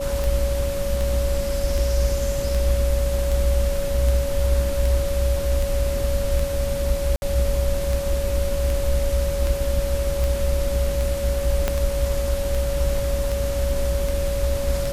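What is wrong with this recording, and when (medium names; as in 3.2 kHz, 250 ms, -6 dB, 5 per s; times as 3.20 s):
tick 78 rpm
whine 560 Hz -25 dBFS
7.16–7.22 s: dropout 61 ms
11.68 s: pop -7 dBFS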